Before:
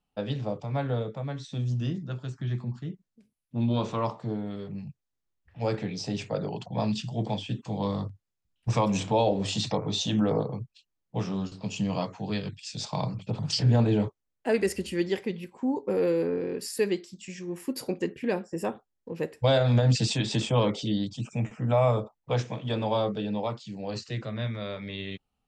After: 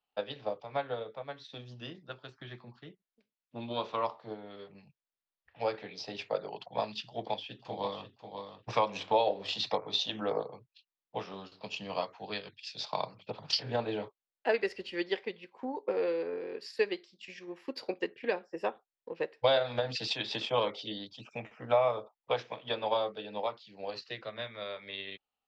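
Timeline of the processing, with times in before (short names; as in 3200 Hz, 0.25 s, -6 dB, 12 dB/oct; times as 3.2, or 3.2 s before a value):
7.05–8.08 echo throw 0.54 s, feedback 20%, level -7 dB
whole clip: three-band isolator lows -19 dB, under 400 Hz, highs -18 dB, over 5700 Hz; transient shaper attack +5 dB, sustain -3 dB; resonant high shelf 6000 Hz -8.5 dB, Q 1.5; gain -3 dB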